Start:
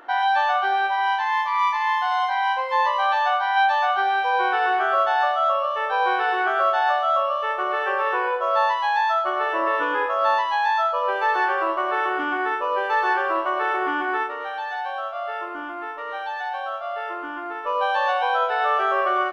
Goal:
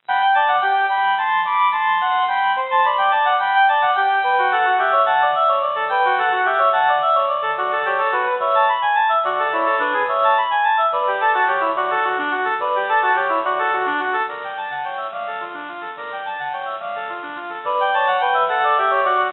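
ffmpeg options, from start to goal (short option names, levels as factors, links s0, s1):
-af "aeval=exprs='sgn(val(0))*max(abs(val(0))-0.00944,0)':c=same,adynamicequalizer=threshold=0.00501:dfrequency=270:dqfactor=1.5:tfrequency=270:tqfactor=1.5:attack=5:release=100:ratio=0.375:range=2:mode=cutabove:tftype=bell,afftfilt=real='re*between(b*sr/4096,120,3900)':imag='im*between(b*sr/4096,120,3900)':win_size=4096:overlap=0.75,volume=1.78"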